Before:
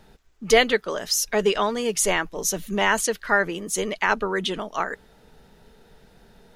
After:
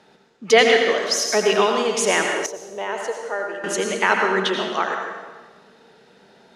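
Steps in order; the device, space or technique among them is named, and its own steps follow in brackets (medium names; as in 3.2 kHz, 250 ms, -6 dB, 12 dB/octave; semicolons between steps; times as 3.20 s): supermarket ceiling speaker (band-pass 250–6600 Hz; reverberation RT60 1.3 s, pre-delay 77 ms, DRR 2 dB); 2.46–3.64 s: FFT filter 110 Hz 0 dB, 180 Hz -20 dB, 500 Hz -4 dB, 1.5 kHz -14 dB; trim +3 dB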